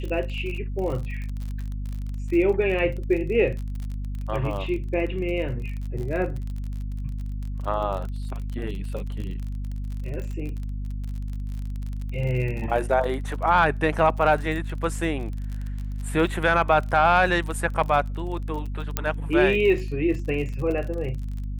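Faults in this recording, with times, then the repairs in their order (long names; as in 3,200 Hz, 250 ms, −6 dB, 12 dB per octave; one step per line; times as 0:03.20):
surface crackle 36 per second −31 dBFS
mains hum 50 Hz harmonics 5 −30 dBFS
0:18.97: click −7 dBFS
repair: click removal
hum removal 50 Hz, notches 5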